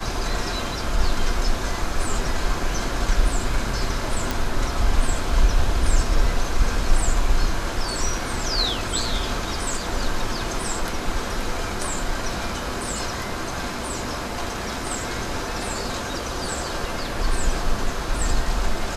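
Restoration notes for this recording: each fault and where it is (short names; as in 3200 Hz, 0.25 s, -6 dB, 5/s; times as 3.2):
4.31 pop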